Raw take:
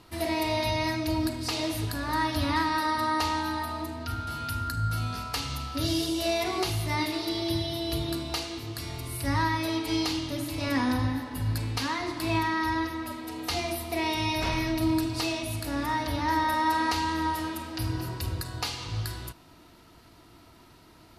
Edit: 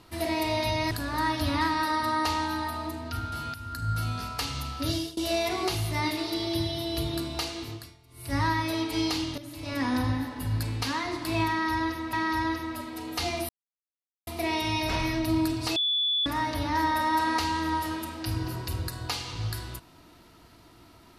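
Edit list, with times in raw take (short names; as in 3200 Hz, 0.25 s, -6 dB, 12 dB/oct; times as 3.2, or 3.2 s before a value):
0.91–1.86 cut
4.49–4.88 fade in linear, from -13 dB
5.85–6.12 fade out, to -24 dB
8.66–9.3 dip -22 dB, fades 0.30 s quadratic
10.33–10.95 fade in, from -13 dB
12.44–13.08 loop, 2 plays
13.8 insert silence 0.78 s
15.29–15.79 bleep 3450 Hz -23 dBFS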